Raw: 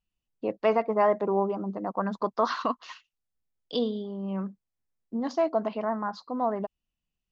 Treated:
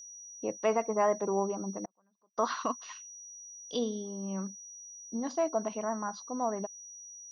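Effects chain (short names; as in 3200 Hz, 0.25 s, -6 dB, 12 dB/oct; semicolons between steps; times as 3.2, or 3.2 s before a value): whine 5800 Hz -41 dBFS; 1.85–2.38 flipped gate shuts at -30 dBFS, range -39 dB; gain -4.5 dB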